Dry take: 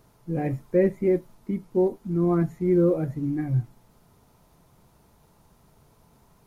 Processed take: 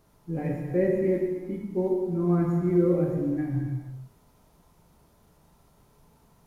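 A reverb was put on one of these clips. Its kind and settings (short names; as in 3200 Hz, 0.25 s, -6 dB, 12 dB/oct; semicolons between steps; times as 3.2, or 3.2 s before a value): non-linear reverb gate 0.5 s falling, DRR -1 dB; gain -5 dB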